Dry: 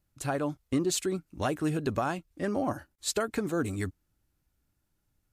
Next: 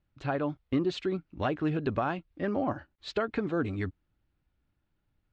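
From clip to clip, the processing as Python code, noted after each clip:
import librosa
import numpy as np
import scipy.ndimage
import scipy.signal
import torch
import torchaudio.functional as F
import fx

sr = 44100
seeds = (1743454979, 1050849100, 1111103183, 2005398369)

y = scipy.signal.sosfilt(scipy.signal.butter(4, 3700.0, 'lowpass', fs=sr, output='sos'), x)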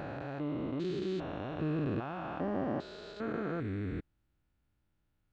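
y = fx.spec_steps(x, sr, hold_ms=400)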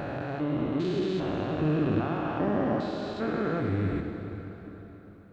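y = fx.rev_plate(x, sr, seeds[0], rt60_s=4.3, hf_ratio=0.8, predelay_ms=0, drr_db=4.0)
y = y * 10.0 ** (6.0 / 20.0)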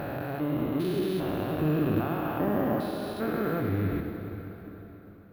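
y = np.repeat(scipy.signal.resample_poly(x, 1, 3), 3)[:len(x)]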